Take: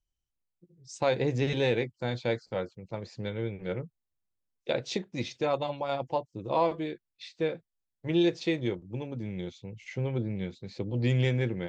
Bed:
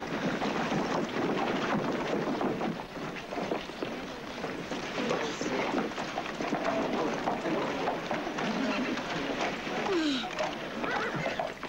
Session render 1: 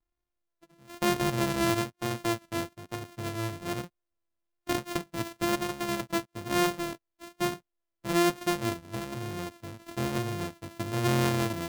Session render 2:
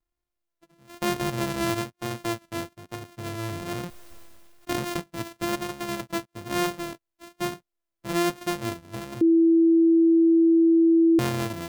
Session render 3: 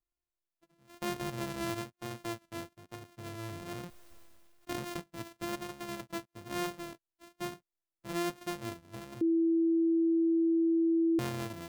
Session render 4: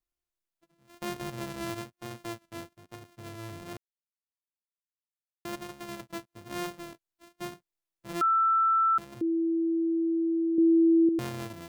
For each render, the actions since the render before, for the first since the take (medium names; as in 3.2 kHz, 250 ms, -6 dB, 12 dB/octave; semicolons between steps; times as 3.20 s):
sorted samples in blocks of 128 samples; vibrato 1.1 Hz 36 cents
3.26–5.00 s: decay stretcher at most 27 dB/s; 9.21–11.19 s: bleep 330 Hz -14.5 dBFS
trim -9.5 dB
3.77–5.45 s: mute; 8.21–8.98 s: bleep 1.33 kHz -20.5 dBFS; 10.58–11.09 s: bass shelf 470 Hz +10 dB